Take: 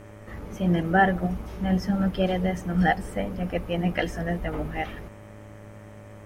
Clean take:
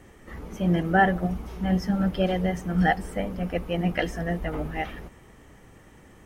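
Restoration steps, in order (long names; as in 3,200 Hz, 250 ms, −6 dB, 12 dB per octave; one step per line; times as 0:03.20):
hum removal 105.3 Hz, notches 24
notch filter 580 Hz, Q 30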